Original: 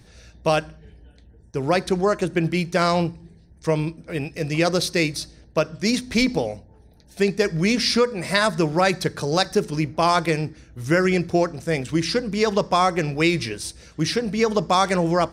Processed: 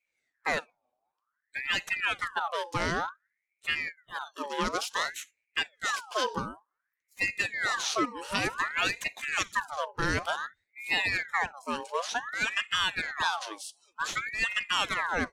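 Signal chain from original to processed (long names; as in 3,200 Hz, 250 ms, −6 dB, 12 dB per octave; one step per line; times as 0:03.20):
loose part that buzzes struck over −25 dBFS, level −27 dBFS
noise reduction from a noise print of the clip's start 24 dB
ring modulator whose carrier an LFO sweeps 1,500 Hz, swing 55%, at 0.55 Hz
level −7 dB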